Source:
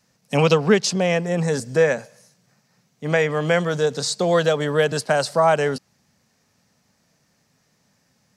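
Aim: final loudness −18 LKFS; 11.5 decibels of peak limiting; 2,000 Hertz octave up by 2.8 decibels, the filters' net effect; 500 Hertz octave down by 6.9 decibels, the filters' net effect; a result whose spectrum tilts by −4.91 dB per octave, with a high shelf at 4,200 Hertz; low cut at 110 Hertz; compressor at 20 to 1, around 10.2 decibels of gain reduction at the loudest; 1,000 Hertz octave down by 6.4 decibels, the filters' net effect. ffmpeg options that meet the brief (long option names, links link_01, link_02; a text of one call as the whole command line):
ffmpeg -i in.wav -af "highpass=110,equalizer=frequency=500:width_type=o:gain=-6,equalizer=frequency=1000:width_type=o:gain=-8.5,equalizer=frequency=2000:width_type=o:gain=8.5,highshelf=frequency=4200:gain=-9,acompressor=threshold=-24dB:ratio=20,volume=15.5dB,alimiter=limit=-8.5dB:level=0:latency=1" out.wav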